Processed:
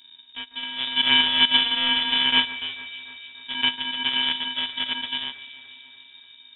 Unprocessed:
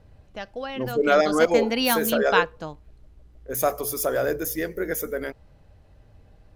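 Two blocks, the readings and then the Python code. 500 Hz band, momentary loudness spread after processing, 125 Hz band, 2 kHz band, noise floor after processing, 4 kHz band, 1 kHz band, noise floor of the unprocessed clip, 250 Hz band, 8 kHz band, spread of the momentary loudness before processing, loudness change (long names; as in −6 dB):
−25.5 dB, 20 LU, below −10 dB, +2.5 dB, −51 dBFS, +16.0 dB, −4.5 dB, −55 dBFS, −8.5 dB, below −40 dB, 17 LU, +2.5 dB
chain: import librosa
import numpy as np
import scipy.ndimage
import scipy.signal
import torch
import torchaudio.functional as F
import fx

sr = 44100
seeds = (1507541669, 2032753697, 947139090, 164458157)

y = np.r_[np.sort(x[:len(x) // 64 * 64].reshape(-1, 64), axis=1).ravel(), x[len(x) // 64 * 64:]]
y = fx.freq_invert(y, sr, carrier_hz=3700)
y = fx.echo_alternate(y, sr, ms=146, hz=2200.0, feedback_pct=77, wet_db=-14.0)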